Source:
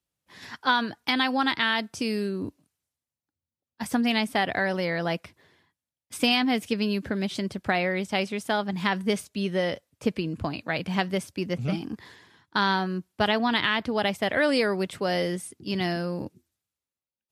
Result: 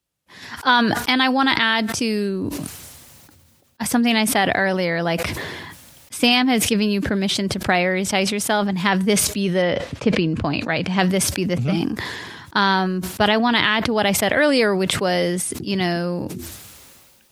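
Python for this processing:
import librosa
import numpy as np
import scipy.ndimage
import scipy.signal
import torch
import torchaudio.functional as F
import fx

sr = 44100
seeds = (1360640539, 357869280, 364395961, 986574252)

y = fx.lowpass(x, sr, hz=fx.line((9.61, 3300.0), (10.98, 7800.0)), slope=12, at=(9.61, 10.98), fade=0.02)
y = fx.sustainer(y, sr, db_per_s=30.0)
y = y * 10.0 ** (6.0 / 20.0)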